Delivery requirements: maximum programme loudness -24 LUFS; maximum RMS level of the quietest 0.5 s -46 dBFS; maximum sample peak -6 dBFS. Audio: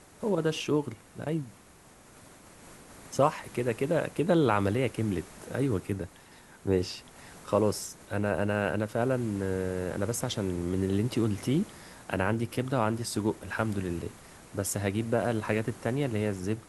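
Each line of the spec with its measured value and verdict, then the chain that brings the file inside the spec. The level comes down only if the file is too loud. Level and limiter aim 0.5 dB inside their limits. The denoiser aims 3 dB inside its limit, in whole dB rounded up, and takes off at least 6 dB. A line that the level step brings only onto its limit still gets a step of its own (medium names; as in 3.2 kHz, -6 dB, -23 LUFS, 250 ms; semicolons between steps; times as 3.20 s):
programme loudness -30.0 LUFS: pass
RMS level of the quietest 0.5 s -55 dBFS: pass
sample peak -10.0 dBFS: pass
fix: none needed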